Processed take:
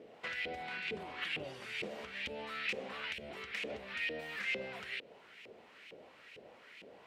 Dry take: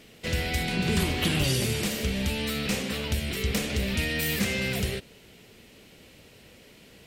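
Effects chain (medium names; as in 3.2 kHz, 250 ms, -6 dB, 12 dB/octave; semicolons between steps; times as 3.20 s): compression 12:1, threshold -35 dBFS, peak gain reduction 15 dB; LFO band-pass saw up 2.2 Hz 430–2600 Hz; dynamic bell 2.7 kHz, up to +4 dB, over -58 dBFS, Q 0.74; trim +6.5 dB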